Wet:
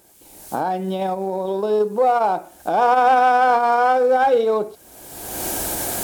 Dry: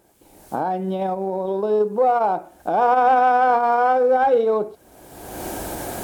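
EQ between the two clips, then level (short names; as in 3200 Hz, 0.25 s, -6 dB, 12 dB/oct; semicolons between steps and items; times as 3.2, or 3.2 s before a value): high shelf 2500 Hz +11 dB; 0.0 dB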